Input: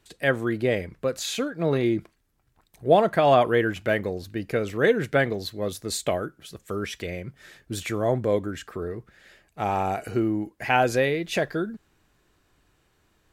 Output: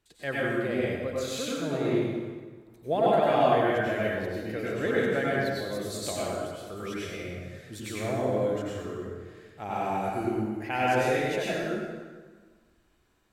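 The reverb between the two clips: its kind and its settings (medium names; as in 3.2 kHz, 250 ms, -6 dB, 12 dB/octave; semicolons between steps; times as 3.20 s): plate-style reverb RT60 1.5 s, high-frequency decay 0.75×, pre-delay 80 ms, DRR -7 dB; trim -11 dB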